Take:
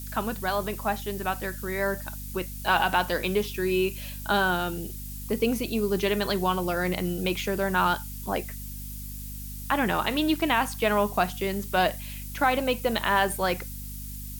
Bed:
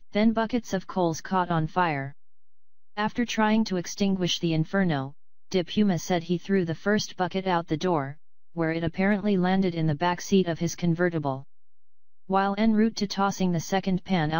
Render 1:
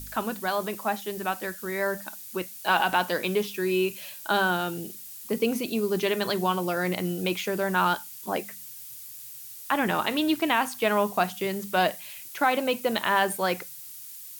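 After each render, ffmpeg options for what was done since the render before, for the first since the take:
-af "bandreject=f=50:t=h:w=4,bandreject=f=100:t=h:w=4,bandreject=f=150:t=h:w=4,bandreject=f=200:t=h:w=4,bandreject=f=250:t=h:w=4"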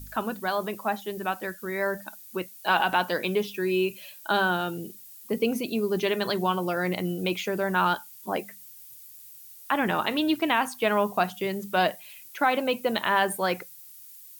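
-af "afftdn=nr=8:nf=-43"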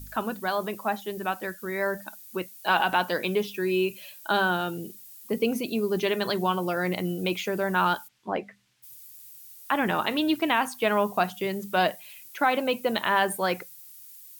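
-filter_complex "[0:a]asplit=3[a][b][c];[a]afade=t=out:st=8.07:d=0.02[d];[b]lowpass=2.8k,afade=t=in:st=8.07:d=0.02,afade=t=out:st=8.82:d=0.02[e];[c]afade=t=in:st=8.82:d=0.02[f];[d][e][f]amix=inputs=3:normalize=0"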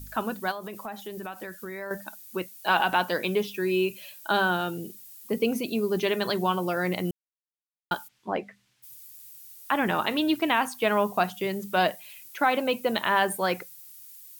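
-filter_complex "[0:a]asettb=1/sr,asplit=3[a][b][c];[a]atrim=end=0.514[d];[b]atrim=start=0.51:end=1.91,asetpts=PTS-STARTPTS,afade=t=in:d=0.004:c=qsin,afade=t=out:st=1.396:d=0.004:c=qsin,acompressor=threshold=-33dB:ratio=5:attack=3.2:release=140:knee=1:detection=peak[e];[c]atrim=start=1.906[f];[d][e]acrossfade=d=0.004:c1=hsin:c2=qsin[g];[g][f]acrossfade=d=0.004:c1=qsin:c2=hsin,asplit=3[h][i][j];[h]atrim=end=7.11,asetpts=PTS-STARTPTS,afade=t=out:st=7.106:d=0.004:c=hsin[k];[i]atrim=start=7.11:end=7.91,asetpts=PTS-STARTPTS,volume=0[l];[j]atrim=start=7.91,asetpts=PTS-STARTPTS,afade=t=in:d=0.004:c=hsin[m];[k][l][m]concat=n=3:v=0:a=1"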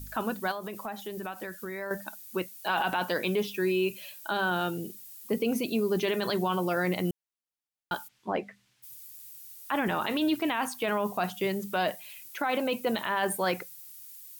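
-af "alimiter=limit=-19dB:level=0:latency=1:release=10"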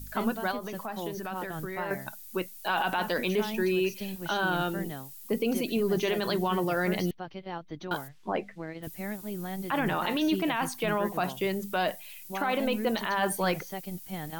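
-filter_complex "[1:a]volume=-13dB[a];[0:a][a]amix=inputs=2:normalize=0"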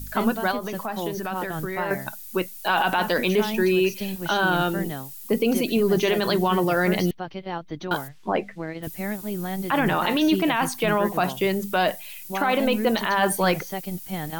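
-af "volume=6.5dB"

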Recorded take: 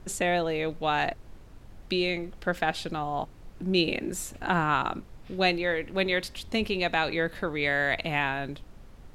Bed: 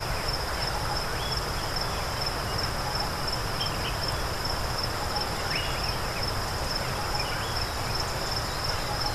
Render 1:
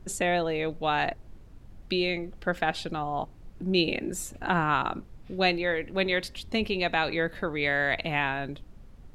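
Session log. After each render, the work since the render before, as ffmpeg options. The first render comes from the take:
-af "afftdn=nr=6:nf=-49"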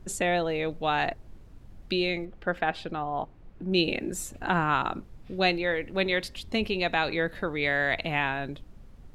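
-filter_complex "[0:a]asettb=1/sr,asplit=3[a][b][c];[a]atrim=end=2.254[d];[b]atrim=start=2.25:end=3.72,asetpts=PTS-STARTPTS,afade=t=in:d=0.004:c=qsin,afade=t=out:st=1.466:d=0.004:c=qsin,bass=f=250:g=-3,treble=f=4k:g=-12[e];[c]atrim=start=3.716[f];[d][e]acrossfade=d=0.004:c1=hsin:c2=qsin[g];[g][f]acrossfade=d=0.004:c1=qsin:c2=hsin"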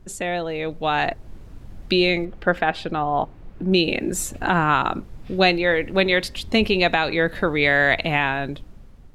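-af "alimiter=limit=-15dB:level=0:latency=1:release=442,dynaudnorm=f=260:g=7:m=9.5dB"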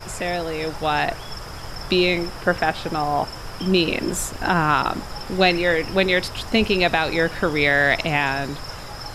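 -filter_complex "[1:a]volume=-5.5dB[a];[0:a][a]amix=inputs=2:normalize=0"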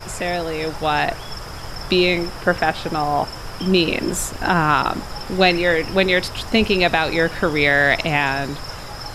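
-af "volume=2dB"

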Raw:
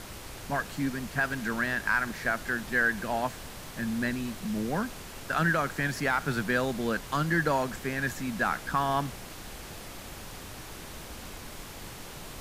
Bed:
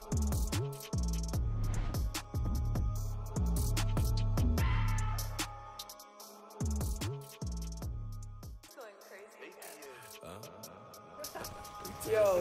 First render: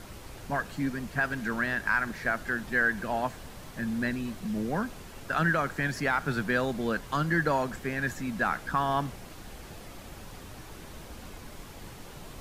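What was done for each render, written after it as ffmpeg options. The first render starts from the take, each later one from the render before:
-af "afftdn=nr=6:nf=-44"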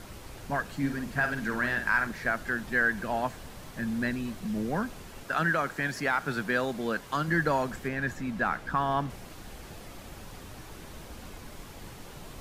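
-filter_complex "[0:a]asettb=1/sr,asplit=3[a][b][c];[a]atrim=end=0.784[d];[b]atrim=start=0.78:end=2.07,asetpts=PTS-STARTPTS,afade=t=in:d=0.004:c=qsin,afade=t=out:st=1.286:d=0.004:c=qsin,asplit=2[e][f];[f]adelay=50,volume=-7.5dB[g];[e][g]amix=inputs=2:normalize=0,atrim=end_sample=56889[h];[c]atrim=start=2.066[i];[d][h]acrossfade=d=0.004:c1=hsin:c2=qsin[j];[j][i]acrossfade=d=0.004:c1=qsin:c2=hsin,asettb=1/sr,asplit=3[k][l][m];[k]atrim=end=5.234[n];[l]atrim=start=5.23:end=7.28,asetpts=PTS-STARTPTS,afade=t=in:d=0.004:c=qsin,afade=t=out:st=2.046:d=0.004:c=qsin,lowshelf=f=120:g=-10.5[o];[m]atrim=start=7.276[p];[n][o]acrossfade=d=0.004:c1=hsin:c2=qsin[q];[q][p]acrossfade=d=0.004:c1=qsin:c2=hsin,asettb=1/sr,asplit=3[r][s][t];[r]atrim=end=7.884[u];[s]atrim=start=7.88:end=9.1,asetpts=PTS-STARTPTS,afade=t=in:d=0.004:c=qsin,afade=t=out:st=1.216:d=0.004:c=qsin,highshelf=f=4.8k:g=-8[v];[t]atrim=start=9.096[w];[u][v]acrossfade=d=0.004:c1=hsin:c2=qsin[x];[x][w]acrossfade=d=0.004:c1=qsin:c2=hsin"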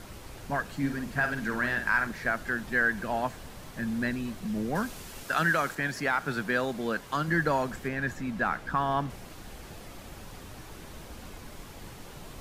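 -filter_complex "[0:a]asettb=1/sr,asplit=3[a][b][c];[a]atrim=end=4.754[d];[b]atrim=start=4.75:end=5.75,asetpts=PTS-STARTPTS,afade=t=in:d=0.004:c=qsin,afade=t=out:st=0.996:d=0.004:c=qsin,highshelf=f=3k:g=8[e];[c]atrim=start=5.746[f];[d][e]acrossfade=d=0.004:c1=hsin:c2=qsin[g];[g][f]acrossfade=d=0.004:c1=qsin:c2=hsin"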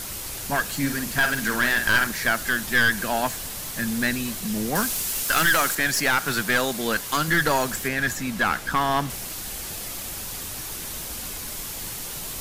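-af "crystalizer=i=5.5:c=0,aeval=exprs='0.447*(cos(1*acos(clip(val(0)/0.447,-1,1)))-cos(1*PI/2))+0.1*(cos(3*acos(clip(val(0)/0.447,-1,1)))-cos(3*PI/2))+0.0891*(cos(4*acos(clip(val(0)/0.447,-1,1)))-cos(4*PI/2))+0.112*(cos(5*acos(clip(val(0)/0.447,-1,1)))-cos(5*PI/2))':c=same"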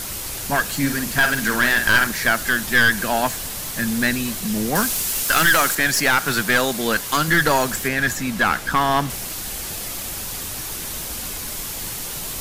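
-af "volume=4dB,alimiter=limit=-2dB:level=0:latency=1"

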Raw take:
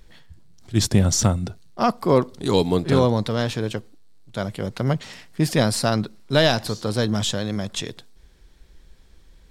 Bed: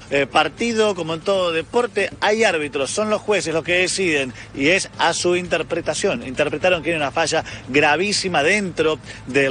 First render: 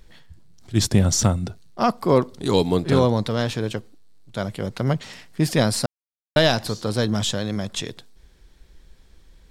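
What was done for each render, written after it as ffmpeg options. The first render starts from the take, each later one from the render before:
-filter_complex "[0:a]asplit=3[a][b][c];[a]atrim=end=5.86,asetpts=PTS-STARTPTS,afade=t=out:st=5.856:d=0.004:c=hsin[d];[b]atrim=start=5.86:end=6.36,asetpts=PTS-STARTPTS,volume=0[e];[c]atrim=start=6.36,asetpts=PTS-STARTPTS,afade=t=in:d=0.004:c=hsin[f];[d][e][f]concat=n=3:v=0:a=1"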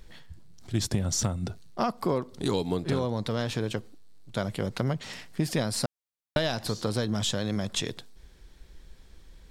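-af "acompressor=threshold=-24dB:ratio=6"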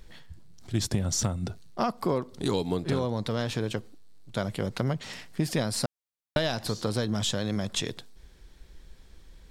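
-af anull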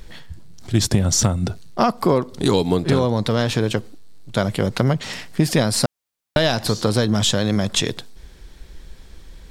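-af "volume=10dB,alimiter=limit=-2dB:level=0:latency=1"

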